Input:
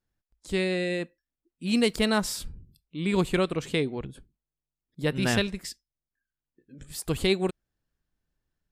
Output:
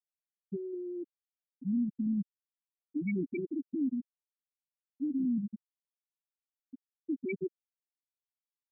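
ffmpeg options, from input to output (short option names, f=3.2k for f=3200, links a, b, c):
-filter_complex "[0:a]asplit=3[a][b][c];[a]bandpass=f=270:t=q:w=8,volume=0dB[d];[b]bandpass=f=2.29k:t=q:w=8,volume=-6dB[e];[c]bandpass=f=3.01k:t=q:w=8,volume=-9dB[f];[d][e][f]amix=inputs=3:normalize=0,acontrast=65,asoftclip=type=hard:threshold=-32dB,afftfilt=real='re*gte(hypot(re,im),0.112)':imag='im*gte(hypot(re,im),0.112)':win_size=1024:overlap=0.75,volume=5dB"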